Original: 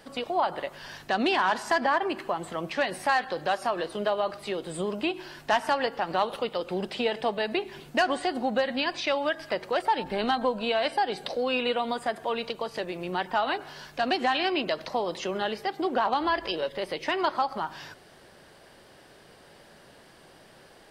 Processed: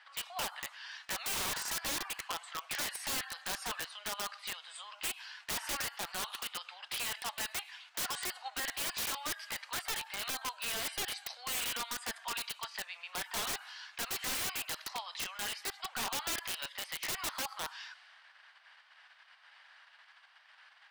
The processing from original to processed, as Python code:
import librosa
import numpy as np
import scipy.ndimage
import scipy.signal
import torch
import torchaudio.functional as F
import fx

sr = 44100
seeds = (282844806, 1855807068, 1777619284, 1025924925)

p1 = scipy.signal.sosfilt(scipy.signal.bessel(8, 1600.0, 'highpass', norm='mag', fs=sr, output='sos'), x)
p2 = fx.env_lowpass(p1, sr, base_hz=2400.0, full_db=-33.5)
p3 = fx.level_steps(p2, sr, step_db=21)
p4 = p2 + (p3 * 10.0 ** (-2.0 / 20.0))
p5 = (np.mod(10.0 ** (28.5 / 20.0) * p4 + 1.0, 2.0) - 1.0) / 10.0 ** (28.5 / 20.0)
y = p5 * 10.0 ** (-1.5 / 20.0)